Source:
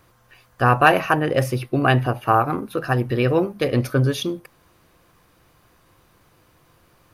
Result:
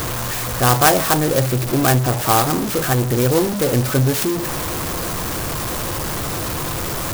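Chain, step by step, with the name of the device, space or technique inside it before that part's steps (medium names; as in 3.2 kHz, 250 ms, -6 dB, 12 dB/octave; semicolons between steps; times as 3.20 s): early CD player with a faulty converter (jump at every zero crossing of -16.5 dBFS; sampling jitter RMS 0.099 ms); trim -1 dB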